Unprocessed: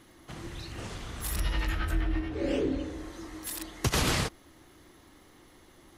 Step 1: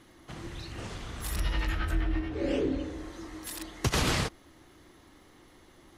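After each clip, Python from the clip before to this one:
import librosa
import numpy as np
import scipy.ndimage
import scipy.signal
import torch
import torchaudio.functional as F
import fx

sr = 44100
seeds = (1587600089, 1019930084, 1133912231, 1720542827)

y = fx.high_shelf(x, sr, hz=11000.0, db=-7.5)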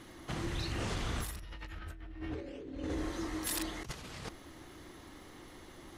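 y = fx.over_compress(x, sr, threshold_db=-39.0, ratio=-1.0)
y = y * 10.0 ** (-1.5 / 20.0)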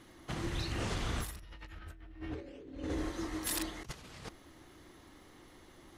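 y = fx.upward_expand(x, sr, threshold_db=-46.0, expansion=1.5)
y = y * 10.0 ** (1.0 / 20.0)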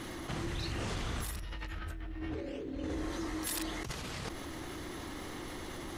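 y = fx.env_flatten(x, sr, amount_pct=70)
y = y * 10.0 ** (-2.0 / 20.0)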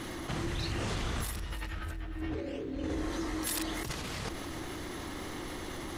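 y = fx.echo_feedback(x, sr, ms=301, feedback_pct=35, wet_db=-14.0)
y = y * 10.0 ** (2.5 / 20.0)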